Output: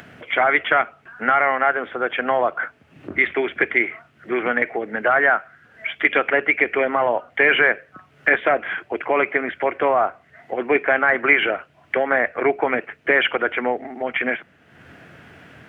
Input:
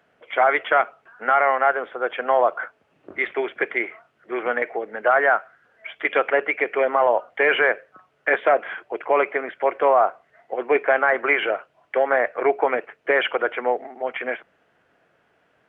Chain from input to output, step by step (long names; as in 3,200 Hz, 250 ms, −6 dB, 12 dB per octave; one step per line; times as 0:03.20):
in parallel at +2.5 dB: downward compressor, threshold −27 dBFS, peak gain reduction 13.5 dB
on the sum: octave-band graphic EQ 125/250/500/1,000/2,000 Hz +8/+5/−5/−4/+3 dB
upward compression, threshold −34 dBFS
parametric band 80 Hz +10 dB 0.29 octaves